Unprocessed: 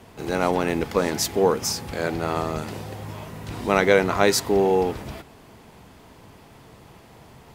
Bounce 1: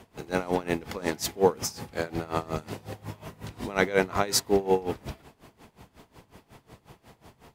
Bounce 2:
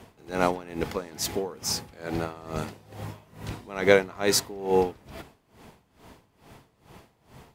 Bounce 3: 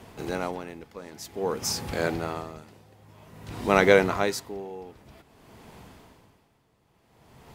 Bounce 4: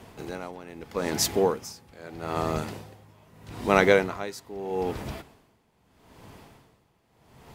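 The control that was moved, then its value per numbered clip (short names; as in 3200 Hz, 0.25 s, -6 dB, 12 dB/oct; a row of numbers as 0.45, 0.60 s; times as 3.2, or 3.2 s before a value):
dB-linear tremolo, rate: 5.5, 2.3, 0.52, 0.79 Hz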